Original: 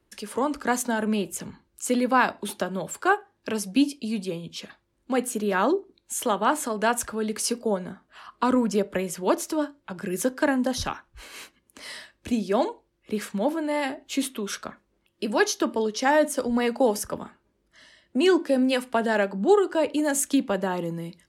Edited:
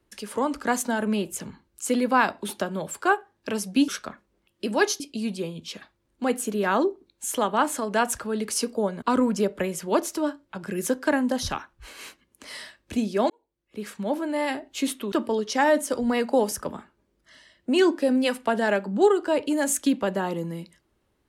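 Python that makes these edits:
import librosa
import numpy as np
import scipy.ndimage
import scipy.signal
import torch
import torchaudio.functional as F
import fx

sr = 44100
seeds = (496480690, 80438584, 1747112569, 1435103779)

y = fx.edit(x, sr, fx.cut(start_s=7.9, length_s=0.47),
    fx.fade_in_span(start_s=12.65, length_s=1.02),
    fx.move(start_s=14.47, length_s=1.12, to_s=3.88), tone=tone)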